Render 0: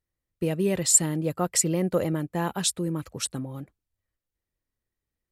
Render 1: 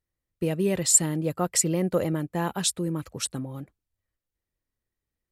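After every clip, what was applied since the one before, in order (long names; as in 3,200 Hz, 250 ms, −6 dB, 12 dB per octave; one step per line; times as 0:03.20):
no processing that can be heard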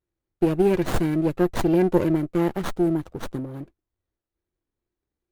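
hollow resonant body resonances 350/2,000 Hz, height 12 dB, ringing for 40 ms
windowed peak hold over 17 samples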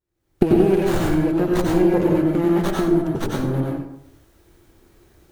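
camcorder AGC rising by 57 dB per second
dense smooth reverb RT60 0.76 s, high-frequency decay 0.65×, pre-delay 80 ms, DRR −2 dB
level −2 dB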